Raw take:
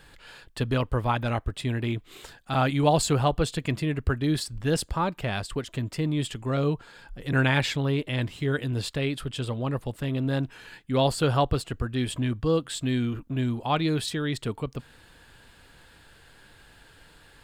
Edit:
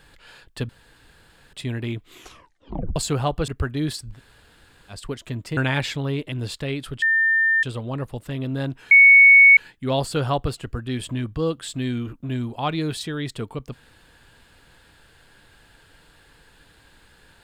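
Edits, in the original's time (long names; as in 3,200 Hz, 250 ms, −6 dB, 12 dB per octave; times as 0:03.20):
0:00.69–0:01.53: fill with room tone
0:02.11: tape stop 0.85 s
0:03.48–0:03.95: remove
0:04.62–0:05.40: fill with room tone, crossfade 0.10 s
0:06.04–0:07.37: remove
0:08.12–0:08.66: remove
0:09.36: insert tone 1,800 Hz −15.5 dBFS 0.61 s
0:10.64: insert tone 2,220 Hz −7 dBFS 0.66 s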